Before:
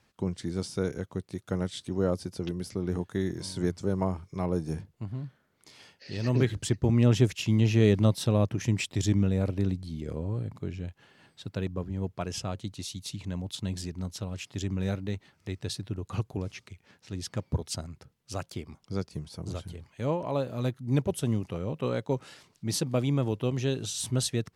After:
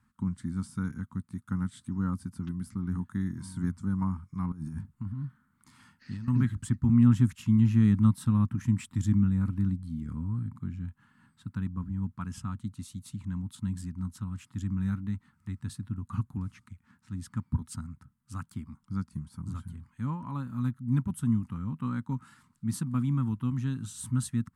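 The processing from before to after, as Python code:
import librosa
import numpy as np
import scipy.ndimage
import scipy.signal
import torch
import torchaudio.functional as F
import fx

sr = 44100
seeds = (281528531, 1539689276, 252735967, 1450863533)

y = fx.over_compress(x, sr, threshold_db=-36.0, ratio=-1.0, at=(4.52, 6.28))
y = fx.curve_eq(y, sr, hz=(170.0, 240.0, 390.0, 640.0, 930.0, 1300.0, 2500.0, 5700.0, 8500.0, 13000.0), db=(0, 5, -23, -28, -4, 1, -14, -16, -4, -7))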